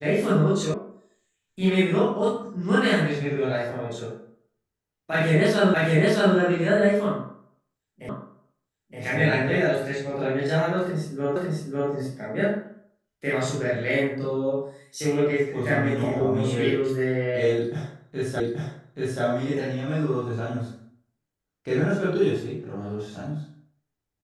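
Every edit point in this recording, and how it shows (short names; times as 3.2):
0.74 sound cut off
5.74 repeat of the last 0.62 s
8.09 repeat of the last 0.92 s
11.36 repeat of the last 0.55 s
18.4 repeat of the last 0.83 s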